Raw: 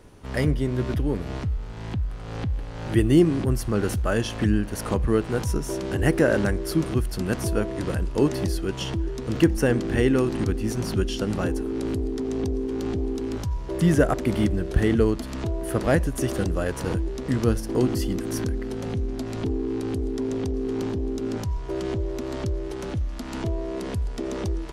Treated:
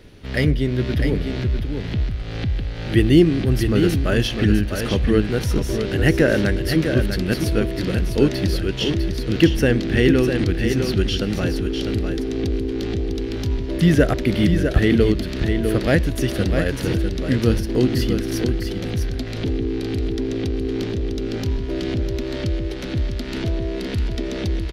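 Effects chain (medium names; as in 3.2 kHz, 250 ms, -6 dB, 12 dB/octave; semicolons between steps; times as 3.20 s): graphic EQ 1/2/4/8 kHz -10/+4/+7/-9 dB; delay 652 ms -6.5 dB; trim +4.5 dB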